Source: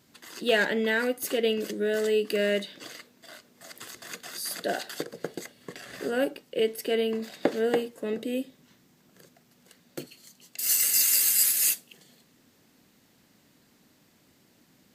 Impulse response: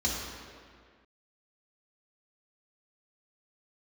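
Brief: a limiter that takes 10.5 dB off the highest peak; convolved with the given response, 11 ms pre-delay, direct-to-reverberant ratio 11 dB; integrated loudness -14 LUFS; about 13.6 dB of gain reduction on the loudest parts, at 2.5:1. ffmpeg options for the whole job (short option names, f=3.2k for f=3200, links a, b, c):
-filter_complex "[0:a]acompressor=threshold=-42dB:ratio=2.5,alimiter=level_in=6.5dB:limit=-24dB:level=0:latency=1,volume=-6.5dB,asplit=2[a][b];[1:a]atrim=start_sample=2205,adelay=11[c];[b][c]afir=irnorm=-1:irlink=0,volume=-19.5dB[d];[a][d]amix=inputs=2:normalize=0,volume=27dB"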